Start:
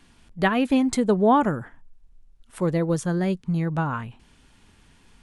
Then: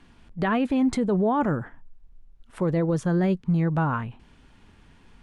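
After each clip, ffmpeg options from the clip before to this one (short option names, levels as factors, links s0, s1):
-af "lowpass=f=2300:p=1,alimiter=limit=0.119:level=0:latency=1:release=17,volume=1.33"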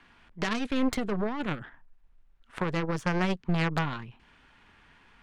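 -filter_complex "[0:a]equalizer=f=1700:t=o:w=3:g=14.5,acrossover=split=340|3000[s0][s1][s2];[s1]acompressor=threshold=0.0316:ratio=4[s3];[s0][s3][s2]amix=inputs=3:normalize=0,aeval=exprs='0.282*(cos(1*acos(clip(val(0)/0.282,-1,1)))-cos(1*PI/2))+0.0562*(cos(3*acos(clip(val(0)/0.282,-1,1)))-cos(3*PI/2))+0.0447*(cos(6*acos(clip(val(0)/0.282,-1,1)))-cos(6*PI/2))+0.0141*(cos(8*acos(clip(val(0)/0.282,-1,1)))-cos(8*PI/2))':c=same,volume=0.75"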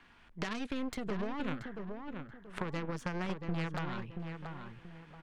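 -filter_complex "[0:a]acompressor=threshold=0.0316:ratio=6,asplit=2[s0][s1];[s1]adelay=681,lowpass=f=2000:p=1,volume=0.531,asplit=2[s2][s3];[s3]adelay=681,lowpass=f=2000:p=1,volume=0.33,asplit=2[s4][s5];[s5]adelay=681,lowpass=f=2000:p=1,volume=0.33,asplit=2[s6][s7];[s7]adelay=681,lowpass=f=2000:p=1,volume=0.33[s8];[s2][s4][s6][s8]amix=inputs=4:normalize=0[s9];[s0][s9]amix=inputs=2:normalize=0,volume=0.75"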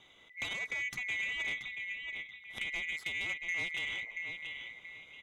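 -af "afftfilt=real='real(if(lt(b,920),b+92*(1-2*mod(floor(b/92),2)),b),0)':imag='imag(if(lt(b,920),b+92*(1-2*mod(floor(b/92),2)),b),0)':win_size=2048:overlap=0.75,asoftclip=type=tanh:threshold=0.0422"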